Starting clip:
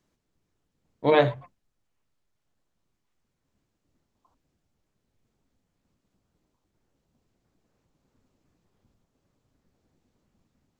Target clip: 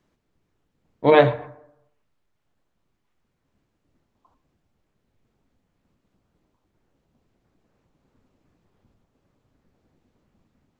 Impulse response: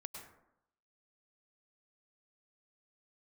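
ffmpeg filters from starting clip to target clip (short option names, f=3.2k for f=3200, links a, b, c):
-filter_complex "[0:a]bass=f=250:g=-1,treble=f=4k:g=-8,asplit=2[a][b];[1:a]atrim=start_sample=2205[c];[b][c]afir=irnorm=-1:irlink=0,volume=-9.5dB[d];[a][d]amix=inputs=2:normalize=0,volume=4dB"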